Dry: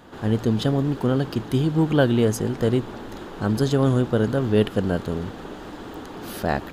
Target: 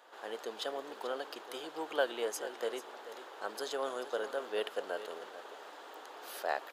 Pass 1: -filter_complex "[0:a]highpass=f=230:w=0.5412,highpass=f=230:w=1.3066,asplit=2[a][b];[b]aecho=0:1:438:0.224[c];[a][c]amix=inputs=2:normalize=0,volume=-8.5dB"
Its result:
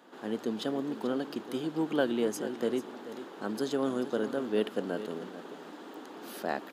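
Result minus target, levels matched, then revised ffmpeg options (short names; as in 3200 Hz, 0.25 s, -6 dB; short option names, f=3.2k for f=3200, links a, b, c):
250 Hz band +11.5 dB
-filter_complex "[0:a]highpass=f=500:w=0.5412,highpass=f=500:w=1.3066,asplit=2[a][b];[b]aecho=0:1:438:0.224[c];[a][c]amix=inputs=2:normalize=0,volume=-8.5dB"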